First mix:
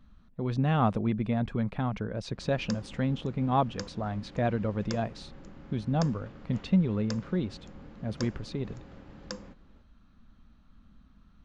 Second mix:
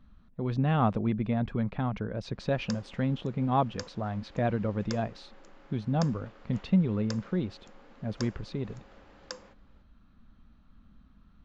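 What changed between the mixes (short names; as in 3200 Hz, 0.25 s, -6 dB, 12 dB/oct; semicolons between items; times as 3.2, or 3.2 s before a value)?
speech: add air absorption 85 m; background: add HPF 470 Hz 12 dB/oct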